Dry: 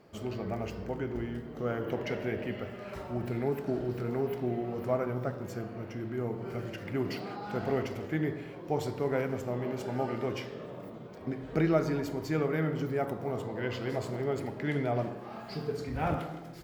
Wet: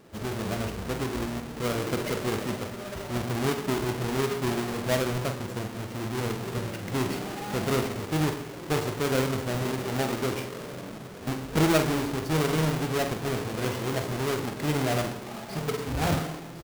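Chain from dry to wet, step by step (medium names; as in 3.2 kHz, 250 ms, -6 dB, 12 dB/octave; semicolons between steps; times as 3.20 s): square wave that keeps the level; doubling 46 ms -9 dB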